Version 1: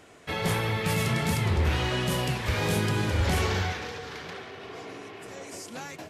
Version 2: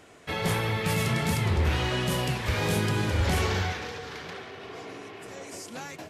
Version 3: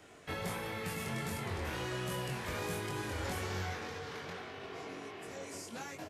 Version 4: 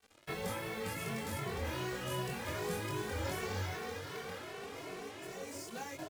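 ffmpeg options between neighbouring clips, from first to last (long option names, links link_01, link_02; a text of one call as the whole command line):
ffmpeg -i in.wav -af anull out.wav
ffmpeg -i in.wav -filter_complex "[0:a]acrossover=split=200|890|1900|6000[link_01][link_02][link_03][link_04][link_05];[link_01]acompressor=threshold=-39dB:ratio=4[link_06];[link_02]acompressor=threshold=-38dB:ratio=4[link_07];[link_03]acompressor=threshold=-40dB:ratio=4[link_08];[link_04]acompressor=threshold=-48dB:ratio=4[link_09];[link_05]acompressor=threshold=-44dB:ratio=4[link_10];[link_06][link_07][link_08][link_09][link_10]amix=inputs=5:normalize=0,asplit=2[link_11][link_12];[link_12]adelay=22,volume=-3dB[link_13];[link_11][link_13]amix=inputs=2:normalize=0,volume=-5.5dB" out.wav
ffmpeg -i in.wav -filter_complex "[0:a]acrusher=bits=7:mix=0:aa=0.5,equalizer=frequency=470:width=1.5:gain=2.5,asplit=2[link_01][link_02];[link_02]adelay=2.2,afreqshift=2.6[link_03];[link_01][link_03]amix=inputs=2:normalize=1,volume=2dB" out.wav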